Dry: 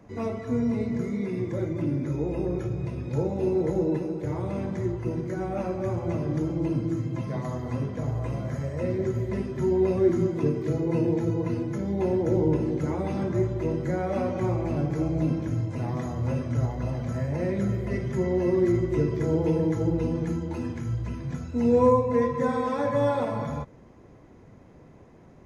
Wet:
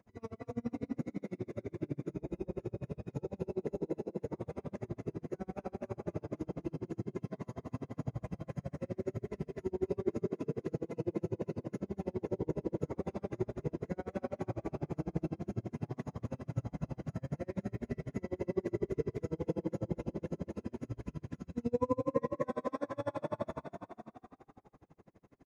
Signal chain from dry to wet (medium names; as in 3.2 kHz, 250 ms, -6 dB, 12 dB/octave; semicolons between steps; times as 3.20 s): on a send: frequency-shifting echo 232 ms, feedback 55%, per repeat +37 Hz, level -4 dB; on the sum: logarithmic tremolo 12 Hz, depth 37 dB; trim -7.5 dB